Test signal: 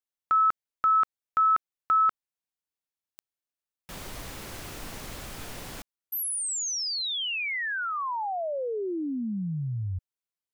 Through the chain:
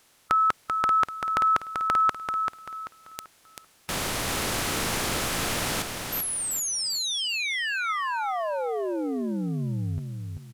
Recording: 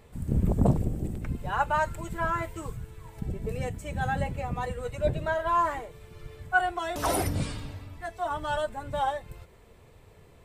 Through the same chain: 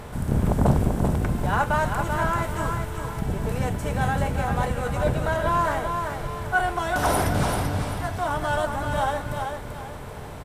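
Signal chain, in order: spectral levelling over time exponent 0.6; feedback delay 388 ms, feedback 33%, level -5.5 dB

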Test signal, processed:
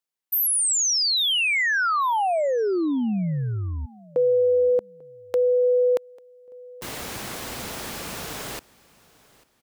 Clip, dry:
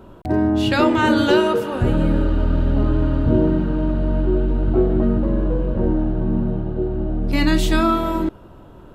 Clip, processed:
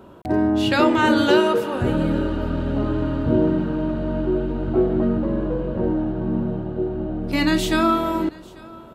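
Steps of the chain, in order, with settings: high-pass 150 Hz 6 dB/octave; on a send: feedback delay 844 ms, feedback 33%, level -23.5 dB

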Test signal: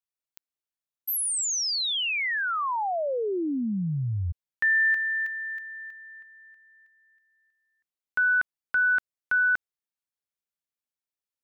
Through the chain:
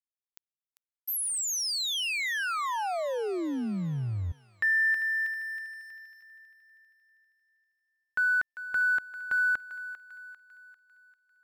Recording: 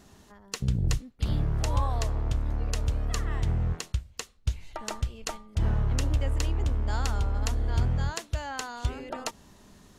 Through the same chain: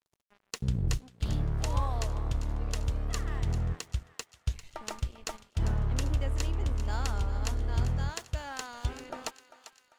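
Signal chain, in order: crossover distortion -47 dBFS; thinning echo 396 ms, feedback 53%, high-pass 900 Hz, level -12 dB; trim -2.5 dB

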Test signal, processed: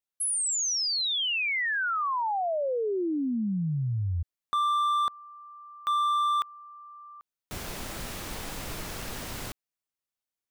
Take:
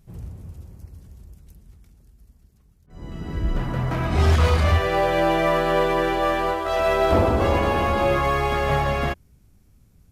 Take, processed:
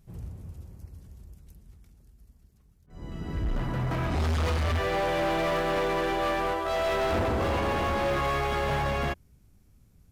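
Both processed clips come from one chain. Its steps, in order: hard clipper -20.5 dBFS; trim -3.5 dB

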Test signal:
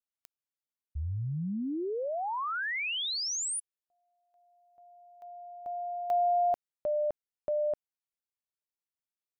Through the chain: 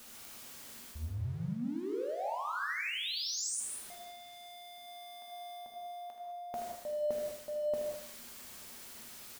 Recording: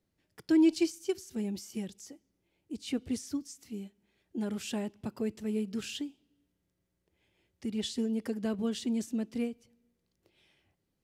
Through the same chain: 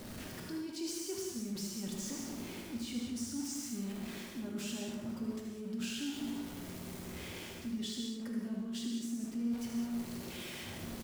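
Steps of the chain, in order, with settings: jump at every zero crossing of -42 dBFS; peaking EQ 230 Hz +10 dB 0.26 oct; peak limiter -25.5 dBFS; reverse; compression 6:1, threshold -39 dBFS; reverse; feedback delay 77 ms, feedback 39%, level -8 dB; gated-style reverb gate 230 ms flat, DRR 0 dB; trim -1 dB

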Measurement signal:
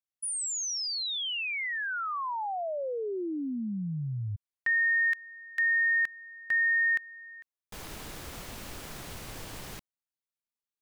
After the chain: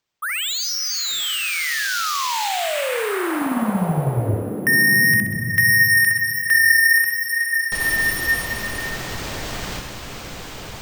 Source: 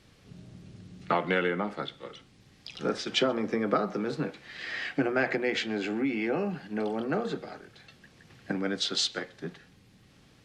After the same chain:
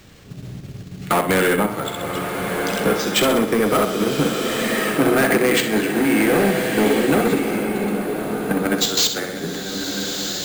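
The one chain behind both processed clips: on a send: flutter echo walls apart 11.1 m, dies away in 0.57 s; on the sum: saturation -26 dBFS; wow and flutter 0.51 Hz 24 cents; in parallel at +3 dB: level held to a coarse grid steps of 16 dB; on the sum: careless resampling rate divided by 4×, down none, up hold; swelling reverb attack 1410 ms, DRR 3.5 dB; trim +7 dB

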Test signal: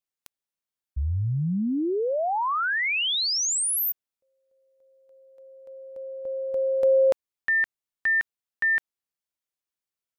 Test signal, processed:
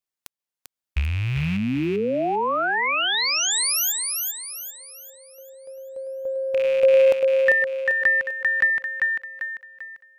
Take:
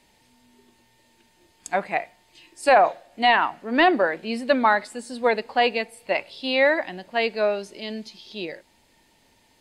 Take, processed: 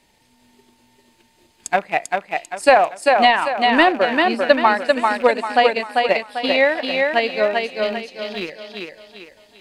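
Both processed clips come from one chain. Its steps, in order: rattle on loud lows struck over -42 dBFS, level -24 dBFS; transient shaper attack +6 dB, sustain -5 dB; thinning echo 394 ms, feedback 41%, high-pass 170 Hz, level -3 dB; trim +1 dB

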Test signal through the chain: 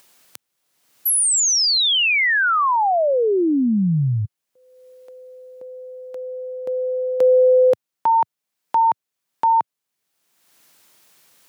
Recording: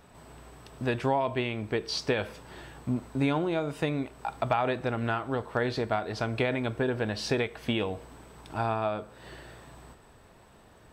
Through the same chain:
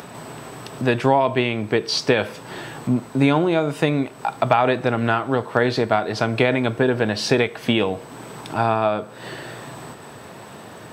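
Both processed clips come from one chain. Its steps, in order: high-pass 110 Hz 24 dB/octave; in parallel at -1.5 dB: upward compressor, threshold -32 dBFS; on the sum: trim +4.5 dB

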